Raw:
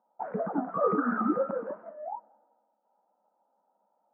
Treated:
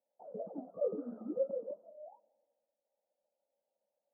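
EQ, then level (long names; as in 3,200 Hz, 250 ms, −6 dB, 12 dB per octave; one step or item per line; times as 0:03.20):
transistor ladder low-pass 610 Hz, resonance 70%
dynamic equaliser 290 Hz, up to +4 dB, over −40 dBFS, Q 0.8
−7.5 dB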